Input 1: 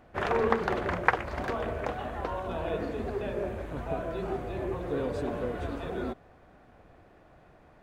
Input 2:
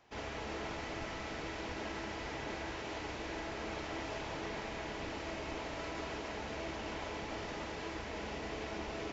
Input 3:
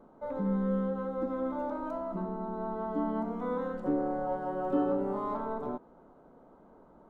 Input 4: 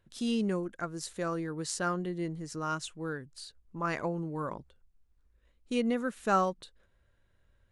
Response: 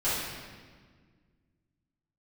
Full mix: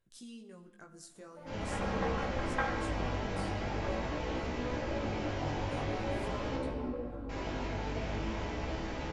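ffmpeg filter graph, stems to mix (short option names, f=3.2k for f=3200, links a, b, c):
-filter_complex "[0:a]afwtdn=0.0178,aecho=1:1:3.7:0.97,adelay=1500,volume=-15dB,asplit=2[a][b];[b]volume=-6.5dB[c];[1:a]lowshelf=f=230:g=8.5,adelay=1350,volume=-5dB,asplit=3[d][e][f];[d]atrim=end=6.56,asetpts=PTS-STARTPTS,afade=t=out:st=6.556:d=0.004:c=hsin[g];[e]atrim=start=6.56:end=7.29,asetpts=PTS-STARTPTS,volume=0[h];[f]atrim=start=7.29,asetpts=PTS-STARTPTS,afade=t=in:d=0.004:c=hsin[i];[g][h][i]concat=n=3:v=0:a=1,asplit=2[j][k];[k]volume=-3.5dB[l];[2:a]adelay=1150,volume=-8dB[m];[3:a]equalizer=f=8.6k:w=0.76:g=7.5,acompressor=threshold=-42dB:ratio=3,volume=-7dB,asplit=2[n][o];[o]volume=-20.5dB[p];[4:a]atrim=start_sample=2205[q];[c][l][p]amix=inputs=3:normalize=0[r];[r][q]afir=irnorm=-1:irlink=0[s];[a][j][m][n][s]amix=inputs=5:normalize=0,flanger=delay=15.5:depth=5:speed=0.45"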